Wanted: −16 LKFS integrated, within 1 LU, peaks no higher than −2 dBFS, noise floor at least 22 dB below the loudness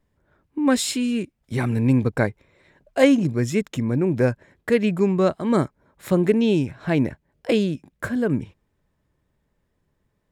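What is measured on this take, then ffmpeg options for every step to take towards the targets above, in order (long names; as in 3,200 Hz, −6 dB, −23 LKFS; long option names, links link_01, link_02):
integrated loudness −22.0 LKFS; sample peak −3.0 dBFS; target loudness −16.0 LKFS
→ -af "volume=6dB,alimiter=limit=-2dB:level=0:latency=1"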